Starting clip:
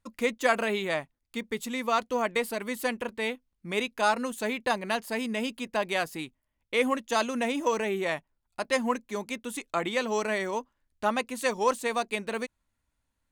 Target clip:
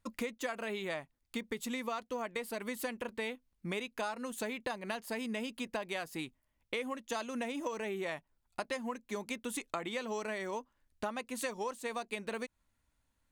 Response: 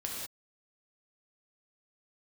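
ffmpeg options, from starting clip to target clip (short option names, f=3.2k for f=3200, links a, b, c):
-af "acompressor=threshold=-35dB:ratio=12,volume=1dB"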